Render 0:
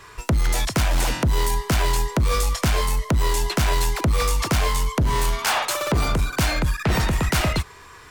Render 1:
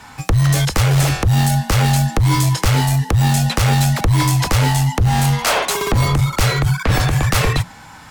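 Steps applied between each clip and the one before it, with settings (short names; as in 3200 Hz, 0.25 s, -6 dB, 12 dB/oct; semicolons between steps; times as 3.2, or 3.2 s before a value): frequency shift -180 Hz; gain +5 dB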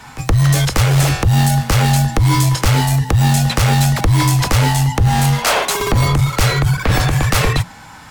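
pre-echo 0.121 s -17.5 dB; gain +1.5 dB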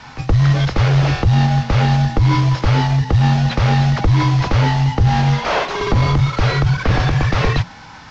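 CVSD 32 kbps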